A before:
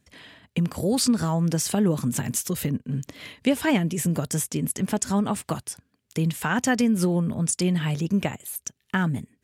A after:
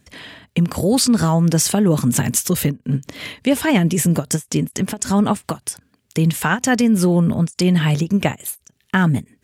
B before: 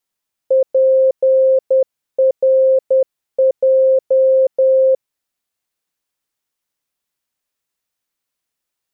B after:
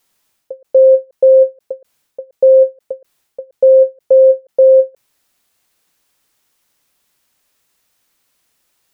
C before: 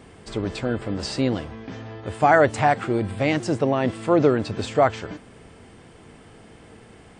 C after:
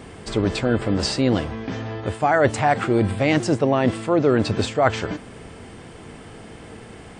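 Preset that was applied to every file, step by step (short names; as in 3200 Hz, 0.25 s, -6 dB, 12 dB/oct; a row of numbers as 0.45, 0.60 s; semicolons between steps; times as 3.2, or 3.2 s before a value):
reverse; compressor 8:1, threshold -21 dBFS; reverse; ending taper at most 350 dB/s; normalise peaks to -3 dBFS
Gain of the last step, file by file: +9.5, +15.5, +7.0 dB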